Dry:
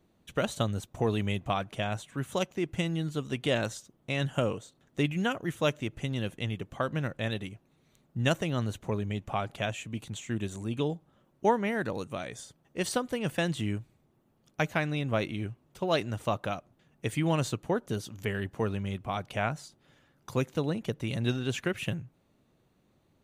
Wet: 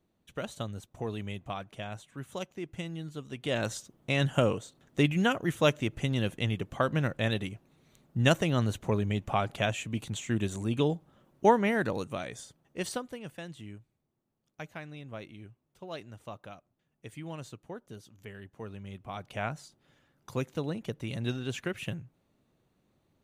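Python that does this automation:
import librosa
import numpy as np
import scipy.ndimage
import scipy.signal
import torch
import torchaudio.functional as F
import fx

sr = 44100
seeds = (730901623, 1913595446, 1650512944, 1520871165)

y = fx.gain(x, sr, db=fx.line((3.35, -7.5), (3.76, 3.0), (11.7, 3.0), (12.87, -3.5), (13.36, -13.5), (18.5, -13.5), (19.45, -3.5)))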